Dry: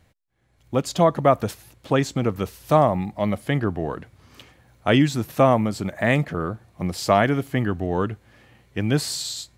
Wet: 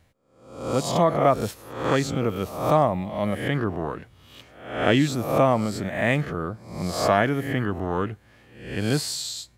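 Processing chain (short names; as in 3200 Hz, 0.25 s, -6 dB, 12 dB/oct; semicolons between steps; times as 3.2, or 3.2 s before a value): spectral swells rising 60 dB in 0.65 s; gain -3.5 dB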